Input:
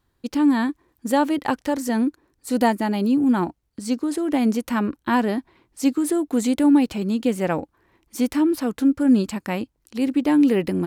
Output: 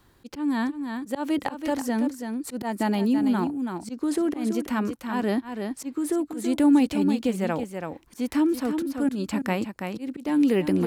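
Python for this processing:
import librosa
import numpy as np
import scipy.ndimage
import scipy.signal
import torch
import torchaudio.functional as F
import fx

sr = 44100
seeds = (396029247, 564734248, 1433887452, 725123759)

p1 = x * (1.0 - 0.41 / 2.0 + 0.41 / 2.0 * np.cos(2.0 * np.pi * 0.74 * (np.arange(len(x)) / sr)))
p2 = fx.auto_swell(p1, sr, attack_ms=256.0)
p3 = p2 + fx.echo_single(p2, sr, ms=330, db=-8.5, dry=0)
y = fx.band_squash(p3, sr, depth_pct=40)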